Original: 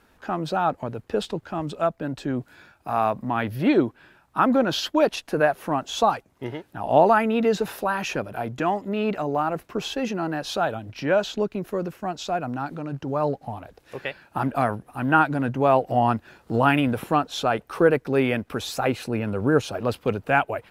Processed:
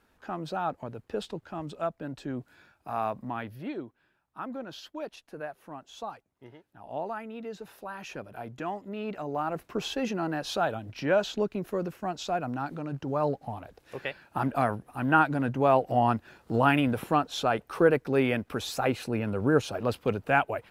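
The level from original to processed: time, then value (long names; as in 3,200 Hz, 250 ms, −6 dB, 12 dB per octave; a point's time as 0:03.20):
0:03.27 −8 dB
0:03.76 −18 dB
0:07.56 −18 dB
0:08.35 −10.5 dB
0:09.07 −10.5 dB
0:09.71 −3.5 dB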